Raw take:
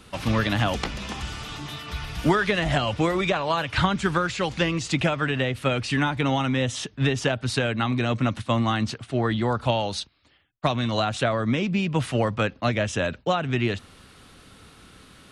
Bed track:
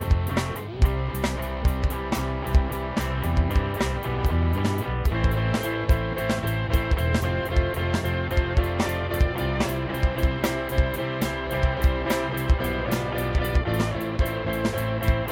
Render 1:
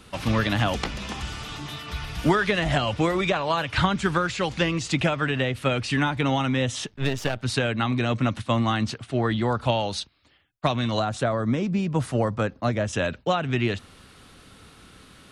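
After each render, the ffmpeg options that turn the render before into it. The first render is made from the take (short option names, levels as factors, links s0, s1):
-filter_complex "[0:a]asettb=1/sr,asplit=3[s0][s1][s2];[s0]atrim=end=6.874[s3];[s1]atrim=start=6.87:end=7.43,asetpts=PTS-STARTPTS,afade=t=in:d=0.004:c=qsin,afade=t=out:st=0.556:d=0.004:c=qsin,aeval=exprs='if(lt(val(0),0),0.251*val(0),val(0))':c=same[s4];[s2]atrim=start=7.426[s5];[s3][s4]acrossfade=d=0.004:c1=hsin:c2=qsin[s6];[s6][s5]acrossfade=d=0.004:c1=qsin:c2=hsin,asettb=1/sr,asplit=3[s7][s8][s9];[s7]atrim=end=10.994[s10];[s8]atrim=start=10.99:end=12.93,asetpts=PTS-STARTPTS,afade=t=in:d=0.004:c=qsin,afade=t=out:st=1.936:d=0.004:c=qsin,equalizer=f=2800:w=1.1:g=-9.5[s11];[s9]atrim=start=12.926[s12];[s10][s11]acrossfade=d=0.004:c1=hsin:c2=qsin[s13];[s13][s12]acrossfade=d=0.004:c1=qsin:c2=hsin"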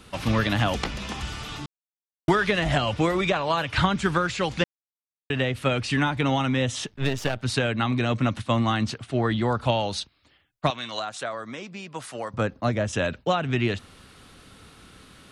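-filter_complex "[0:a]asettb=1/sr,asplit=3[s0][s1][s2];[s0]atrim=end=10.704[s3];[s1]atrim=start=10.7:end=12.34,asetpts=PTS-STARTPTS,afade=t=in:d=0.004:c=qsin,afade=t=out:st=1.636:d=0.004:c=qsin,highpass=f=1300:p=1[s4];[s2]atrim=start=12.336[s5];[s3][s4]acrossfade=d=0.004:c1=hsin:c2=qsin[s6];[s6][s5]acrossfade=d=0.004:c1=qsin:c2=hsin,asplit=5[s7][s8][s9][s10][s11];[s7]atrim=end=1.66,asetpts=PTS-STARTPTS,afade=t=out:st=1.656:d=0.004:c=hsin[s12];[s8]atrim=start=1.66:end=2.28,asetpts=PTS-STARTPTS,volume=0[s13];[s9]atrim=start=2.28:end=4.64,asetpts=PTS-STARTPTS,afade=t=in:d=0.004:c=hsin,afade=t=out:st=2.356:d=0.004:c=hsin[s14];[s10]atrim=start=4.64:end=5.3,asetpts=PTS-STARTPTS,volume=0[s15];[s11]atrim=start=5.3,asetpts=PTS-STARTPTS,afade=t=in:d=0.004:c=hsin[s16];[s12][s13][s14][s15][s16]concat=n=5:v=0:a=1"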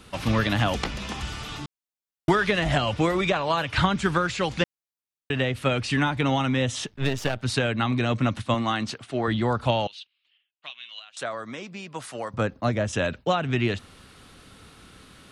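-filter_complex "[0:a]asettb=1/sr,asplit=3[s0][s1][s2];[s0]atrim=end=8.544[s3];[s1]atrim=start=8.54:end=9.28,asetpts=PTS-STARTPTS,afade=t=in:d=0.004:c=qsin,afade=t=out:st=0.736:d=0.004:c=qsin,highpass=f=250:p=1[s4];[s2]atrim=start=9.276[s5];[s3][s4]acrossfade=d=0.004:c1=hsin:c2=qsin[s6];[s6][s5]acrossfade=d=0.004:c1=qsin:c2=hsin,asettb=1/sr,asplit=3[s7][s8][s9];[s7]atrim=end=9.874[s10];[s8]atrim=start=9.87:end=11.17,asetpts=PTS-STARTPTS,afade=t=in:d=0.004:c=qsin,afade=t=out:st=1.296:d=0.004:c=qsin,bandpass=f=2900:t=q:w=4.8[s11];[s9]atrim=start=11.166[s12];[s10][s11]acrossfade=d=0.004:c1=hsin:c2=qsin[s13];[s13][s12]acrossfade=d=0.004:c1=qsin:c2=hsin"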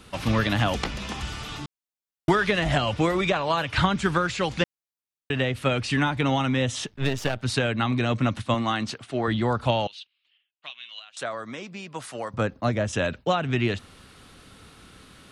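-af anull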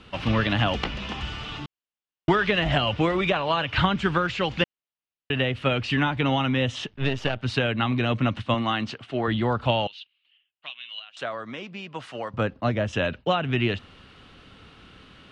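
-af "lowpass=3800,equalizer=f=2900:w=4.9:g=6.5"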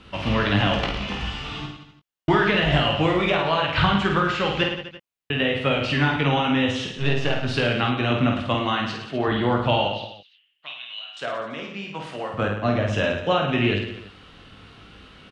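-filter_complex "[0:a]asplit=2[s0][s1];[s1]adelay=20,volume=0.447[s2];[s0][s2]amix=inputs=2:normalize=0,aecho=1:1:50|107.5|173.6|249.7|337.1:0.631|0.398|0.251|0.158|0.1"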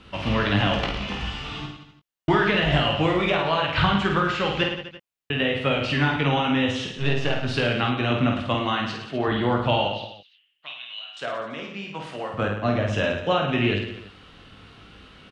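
-af "volume=0.891"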